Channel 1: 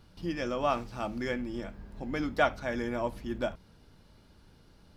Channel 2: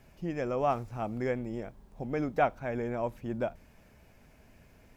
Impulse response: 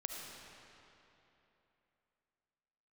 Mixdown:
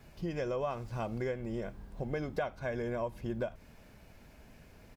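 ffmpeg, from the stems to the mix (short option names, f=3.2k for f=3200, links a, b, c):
-filter_complex "[0:a]volume=-5dB[a];[1:a]adelay=1.3,volume=1.5dB[b];[a][b]amix=inputs=2:normalize=0,acompressor=threshold=-32dB:ratio=5"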